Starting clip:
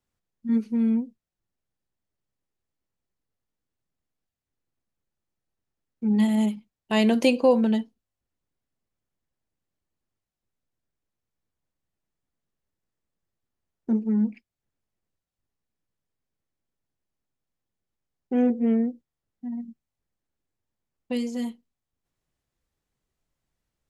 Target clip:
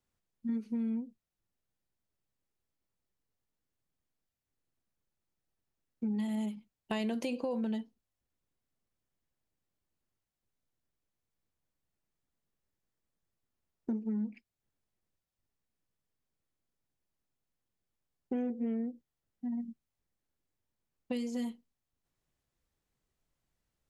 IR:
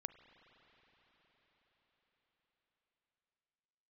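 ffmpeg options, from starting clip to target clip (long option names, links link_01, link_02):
-af "alimiter=limit=-14dB:level=0:latency=1:release=34,acompressor=threshold=-30dB:ratio=6,volume=-2dB"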